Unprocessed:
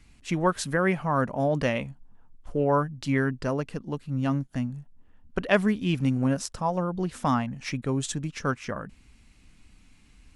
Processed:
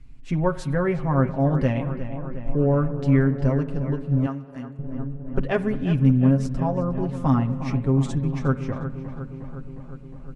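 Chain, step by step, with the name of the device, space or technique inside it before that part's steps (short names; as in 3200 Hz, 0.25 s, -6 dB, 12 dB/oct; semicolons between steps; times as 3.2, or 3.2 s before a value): dub delay into a spring reverb (darkening echo 0.359 s, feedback 73%, low-pass 3000 Hz, level -11 dB; spring tank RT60 1.4 s, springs 51/58 ms, chirp 35 ms, DRR 15.5 dB); 4.26–4.79 HPF 910 Hz 6 dB/oct; tilt -3 dB/oct; comb 7.5 ms, depth 69%; gain -4 dB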